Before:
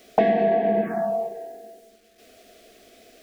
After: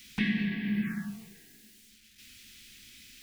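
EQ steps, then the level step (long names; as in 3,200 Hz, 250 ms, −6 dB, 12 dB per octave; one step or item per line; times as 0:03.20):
Chebyshev band-stop filter 150–2,400 Hz, order 2
+4.5 dB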